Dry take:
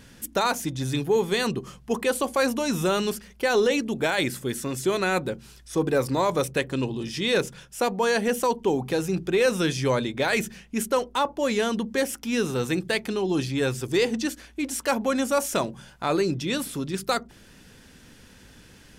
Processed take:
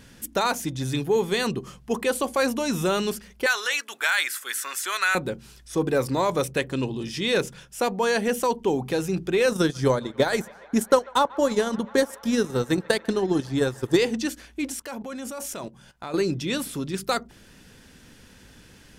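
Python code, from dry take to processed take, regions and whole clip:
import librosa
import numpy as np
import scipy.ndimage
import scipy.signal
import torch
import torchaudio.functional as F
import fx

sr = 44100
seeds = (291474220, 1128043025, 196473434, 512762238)

y = fx.chain(x, sr, fx.highpass_res(hz=1400.0, q=2.0),
    fx.high_shelf(hz=7200.0, db=8.0),
    fx.band_squash(depth_pct=40), at=(3.46, 5.15))
y = fx.chain(y, sr, fx.peak_eq(hz=2500.0, db=-10.5, octaves=0.59),
    fx.transient(attack_db=8, sustain_db=-12),
    fx.echo_wet_bandpass(ms=143, feedback_pct=83, hz=1300.0, wet_db=-21.0), at=(9.49, 13.97))
y = fx.chain(y, sr, fx.level_steps(step_db=17),
    fx.quant_float(bits=8), at=(14.72, 16.14))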